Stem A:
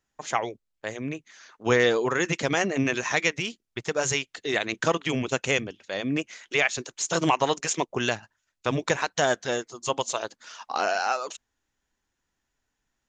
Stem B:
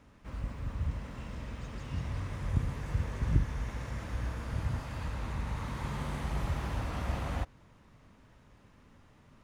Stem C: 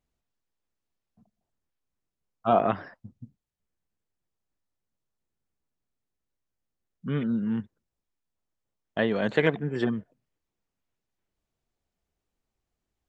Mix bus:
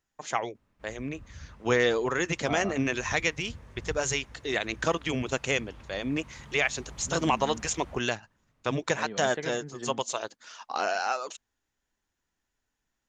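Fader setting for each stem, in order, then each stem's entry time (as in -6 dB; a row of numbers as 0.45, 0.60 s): -3.0, -12.5, -13.0 dB; 0.00, 0.55, 0.00 s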